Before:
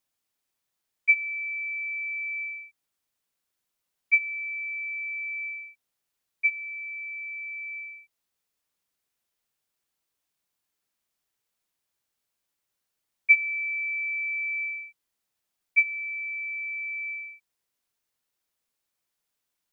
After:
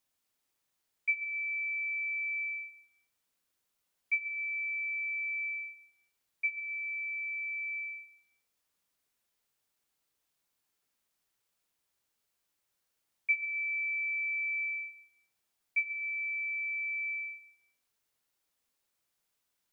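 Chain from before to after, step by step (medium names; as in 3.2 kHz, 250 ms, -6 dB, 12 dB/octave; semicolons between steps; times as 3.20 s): compression 2:1, threshold -36 dBFS, peak gain reduction 12.5 dB; on a send: reverberation RT60 0.80 s, pre-delay 53 ms, DRR 7 dB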